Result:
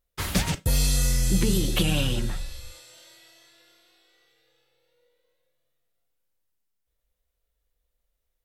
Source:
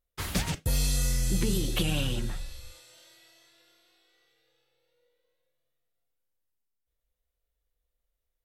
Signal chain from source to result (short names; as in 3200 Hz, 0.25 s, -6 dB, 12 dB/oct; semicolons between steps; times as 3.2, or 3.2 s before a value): resonator 190 Hz, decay 0.28 s, harmonics odd, mix 40%; gain +8.5 dB